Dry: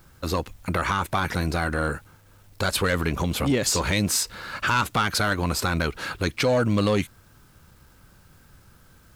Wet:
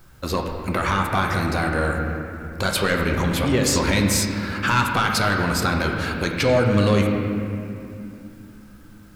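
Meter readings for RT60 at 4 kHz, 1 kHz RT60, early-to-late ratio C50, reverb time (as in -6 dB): 2.0 s, 2.4 s, 3.0 dB, 2.7 s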